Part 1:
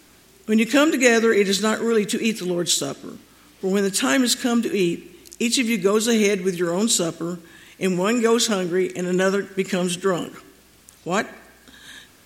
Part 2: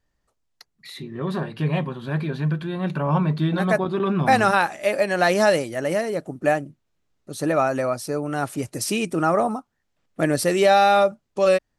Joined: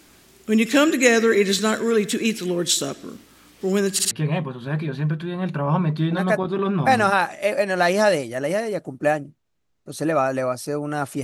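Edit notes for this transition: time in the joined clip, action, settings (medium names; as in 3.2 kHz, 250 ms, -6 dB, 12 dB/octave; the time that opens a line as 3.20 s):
part 1
3.93 s: stutter in place 0.06 s, 3 plays
4.11 s: go over to part 2 from 1.52 s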